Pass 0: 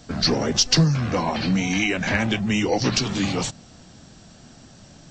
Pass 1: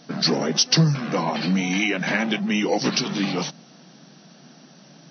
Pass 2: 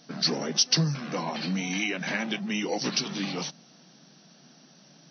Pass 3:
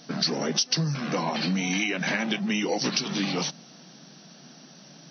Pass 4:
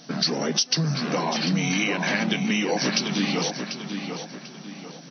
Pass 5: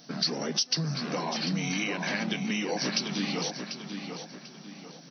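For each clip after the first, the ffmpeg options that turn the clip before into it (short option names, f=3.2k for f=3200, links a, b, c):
-af "afftfilt=real='re*between(b*sr/4096,130,6200)':imag='im*between(b*sr/4096,130,6200)':win_size=4096:overlap=0.75"
-af "highshelf=f=3.7k:g=7,volume=-8dB"
-af "acompressor=threshold=-29dB:ratio=4,volume=6dB"
-filter_complex "[0:a]asplit=2[a][b];[b]adelay=743,lowpass=f=4.1k:p=1,volume=-6.5dB,asplit=2[c][d];[d]adelay=743,lowpass=f=4.1k:p=1,volume=0.41,asplit=2[e][f];[f]adelay=743,lowpass=f=4.1k:p=1,volume=0.41,asplit=2[g][h];[h]adelay=743,lowpass=f=4.1k:p=1,volume=0.41,asplit=2[i][j];[j]adelay=743,lowpass=f=4.1k:p=1,volume=0.41[k];[a][c][e][g][i][k]amix=inputs=6:normalize=0,volume=2dB"
-af "aexciter=amount=1.1:drive=1.8:freq=4.3k,volume=-6.5dB"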